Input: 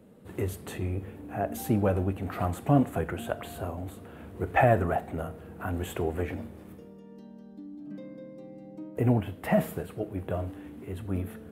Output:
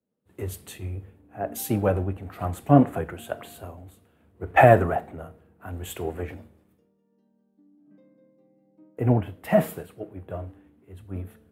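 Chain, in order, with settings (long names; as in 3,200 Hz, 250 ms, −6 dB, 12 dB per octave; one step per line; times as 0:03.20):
dynamic equaliser 220 Hz, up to −3 dB, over −43 dBFS, Q 2.3
multiband upward and downward expander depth 100%
level −1 dB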